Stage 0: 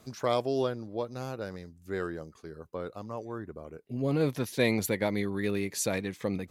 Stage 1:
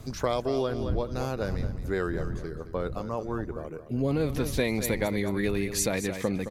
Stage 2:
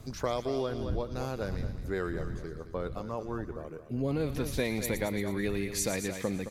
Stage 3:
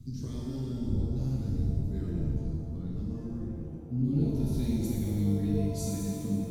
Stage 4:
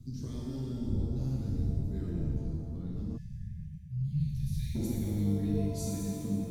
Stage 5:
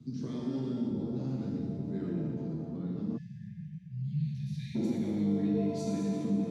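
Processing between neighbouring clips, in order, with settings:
wind on the microphone 100 Hz −41 dBFS; on a send: repeating echo 217 ms, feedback 30%, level −12 dB; on the sum: downward compressor 6 to 1, threshold −29 dBFS, peak gain reduction 9 dB; level +6 dB
delay with a high-pass on its return 116 ms, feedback 57%, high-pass 2,100 Hz, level −9.5 dB; level −4 dB
drawn EQ curve 260 Hz 0 dB, 560 Hz −29 dB, 1,800 Hz −27 dB, 4,200 Hz −13 dB; reverb with rising layers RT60 1.2 s, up +7 semitones, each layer −8 dB, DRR −4 dB
time-frequency box erased 0:03.17–0:04.75, 210–1,600 Hz; level −2 dB
Bessel low-pass filter 3,100 Hz, order 2; in parallel at 0 dB: brickwall limiter −29.5 dBFS, peak gain reduction 11 dB; on the sum: high-pass filter 160 Hz 24 dB per octave

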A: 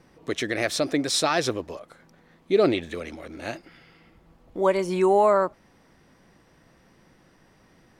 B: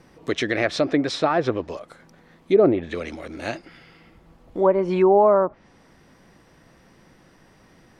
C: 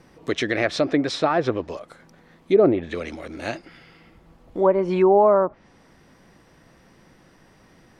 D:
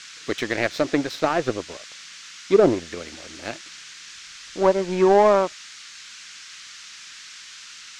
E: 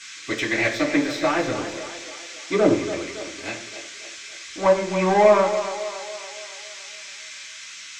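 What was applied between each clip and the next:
treble cut that deepens with the level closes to 1,000 Hz, closed at −17.5 dBFS; level +4 dB
no processing that can be heard
power curve on the samples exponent 1.4; noise in a band 1,300–6,800 Hz −44 dBFS; level +2 dB
echo with a time of its own for lows and highs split 380 Hz, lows 123 ms, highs 281 ms, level −10.5 dB; convolution reverb RT60 0.60 s, pre-delay 3 ms, DRR −5.5 dB; level −4.5 dB

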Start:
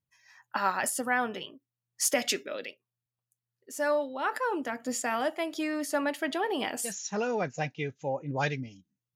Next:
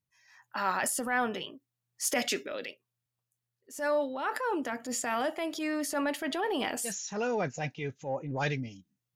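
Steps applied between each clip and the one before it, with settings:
transient designer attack −7 dB, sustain +3 dB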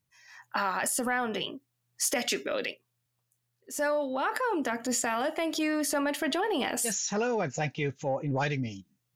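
downward compressor, threshold −33 dBFS, peak gain reduction 9.5 dB
level +7.5 dB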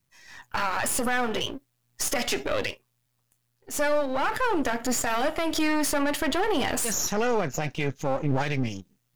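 gain on one half-wave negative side −12 dB
brickwall limiter −23 dBFS, peak gain reduction 7.5 dB
level +8.5 dB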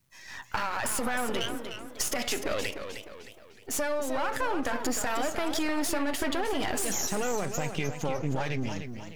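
downward compressor 4 to 1, threshold −31 dBFS, peak gain reduction 10.5 dB
feedback echo with a swinging delay time 306 ms, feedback 43%, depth 143 cents, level −8.5 dB
level +3.5 dB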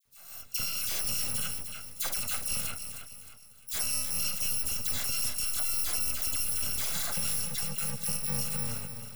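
samples in bit-reversed order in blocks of 128 samples
all-pass dispersion lows, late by 54 ms, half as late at 1,800 Hz
level −1.5 dB

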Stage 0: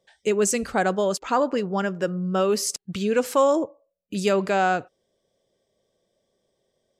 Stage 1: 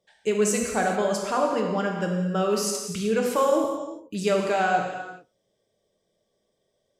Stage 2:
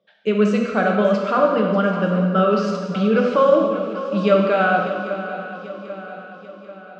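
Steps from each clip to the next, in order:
reverb whose tail is shaped and stops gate 460 ms falling, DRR 0 dB; level −4 dB
loudspeaker in its box 170–3,700 Hz, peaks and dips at 200 Hz +7 dB, 380 Hz −3 dB, 580 Hz +4 dB, 860 Hz −9 dB, 1,300 Hz +8 dB, 1,900 Hz −6 dB; on a send: feedback echo with a long and a short gap by turns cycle 790 ms, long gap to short 3 to 1, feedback 49%, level −13 dB; on the sum: level +5 dB

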